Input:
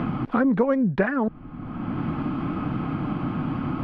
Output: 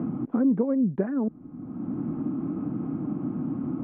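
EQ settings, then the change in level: band-pass filter 280 Hz, Q 1.3; distance through air 220 m; 0.0 dB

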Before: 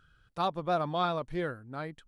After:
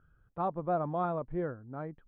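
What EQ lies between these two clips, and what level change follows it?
low-pass 1.1 kHz 12 dB/octave; distance through air 220 m; 0.0 dB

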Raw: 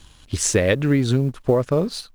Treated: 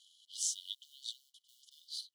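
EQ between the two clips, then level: brick-wall FIR high-pass 2.9 kHz; treble shelf 4.9 kHz -11 dB; -5.0 dB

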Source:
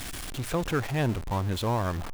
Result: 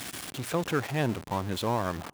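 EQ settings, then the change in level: high-pass 140 Hz 12 dB/octave; 0.0 dB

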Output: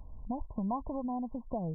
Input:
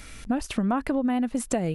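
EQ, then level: brick-wall FIR low-pass 1.1 kHz; peaking EQ 350 Hz -14.5 dB 2 oct; 0.0 dB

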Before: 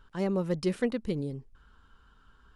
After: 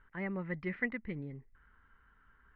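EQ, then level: dynamic bell 470 Hz, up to -6 dB, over -41 dBFS, Q 1.6; resonant low-pass 2 kHz, resonance Q 8.7; distance through air 190 m; -7.5 dB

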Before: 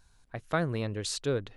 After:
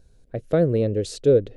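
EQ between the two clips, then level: resonant low shelf 700 Hz +10.5 dB, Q 3; -2.0 dB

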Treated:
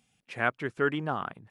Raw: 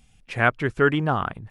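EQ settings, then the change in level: high-pass 160 Hz 12 dB/octave; -7.5 dB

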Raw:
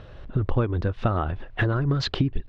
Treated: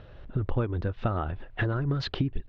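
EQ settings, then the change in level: low-pass 4.8 kHz 12 dB/octave; band-stop 1.1 kHz, Q 20; -4.5 dB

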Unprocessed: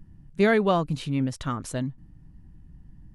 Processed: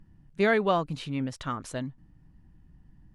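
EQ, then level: bass shelf 350 Hz -7.5 dB; treble shelf 7.2 kHz -9.5 dB; 0.0 dB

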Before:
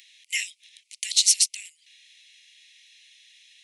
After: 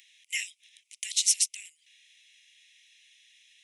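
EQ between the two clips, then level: peaking EQ 4.4 kHz -9.5 dB 0.27 oct; -4.0 dB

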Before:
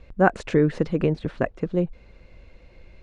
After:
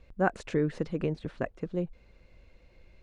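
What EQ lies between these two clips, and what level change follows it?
treble shelf 5.7 kHz +6 dB; -8.5 dB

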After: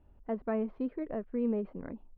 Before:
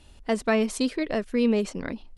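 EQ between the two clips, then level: low-pass 1.2 kHz 12 dB/octave; distance through air 330 m; -8.0 dB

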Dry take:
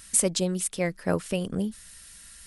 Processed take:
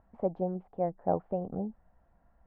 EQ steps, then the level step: four-pole ladder low-pass 830 Hz, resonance 75%; +4.5 dB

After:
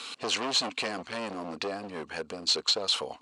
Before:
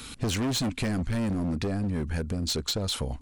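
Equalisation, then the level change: cabinet simulation 460–8400 Hz, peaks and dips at 460 Hz +4 dB, 740 Hz +4 dB, 1.1 kHz +7 dB, 2.8 kHz +7 dB, 4.3 kHz +6 dB; 0.0 dB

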